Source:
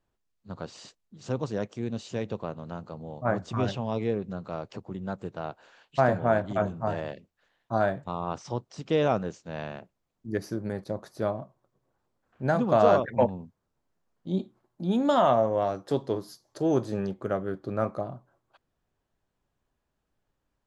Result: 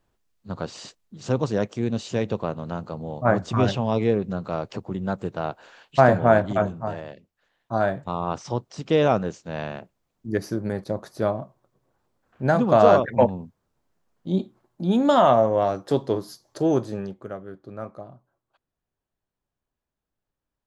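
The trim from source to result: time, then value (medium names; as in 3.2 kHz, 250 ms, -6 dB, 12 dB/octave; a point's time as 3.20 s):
6.45 s +7 dB
7.05 s -3 dB
8.15 s +5 dB
16.62 s +5 dB
17.40 s -7 dB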